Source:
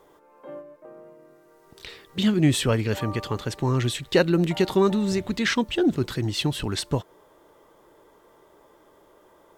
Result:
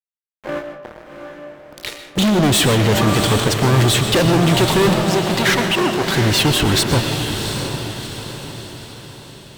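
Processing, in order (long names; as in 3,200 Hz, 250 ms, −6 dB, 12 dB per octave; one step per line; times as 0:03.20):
fuzz pedal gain 32 dB, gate −41 dBFS
0:04.93–0:06.14: bass and treble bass −14 dB, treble −4 dB
feedback delay with all-pass diffusion 719 ms, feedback 48%, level −6.5 dB
comb and all-pass reverb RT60 0.88 s, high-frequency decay 0.6×, pre-delay 80 ms, DRR 8 dB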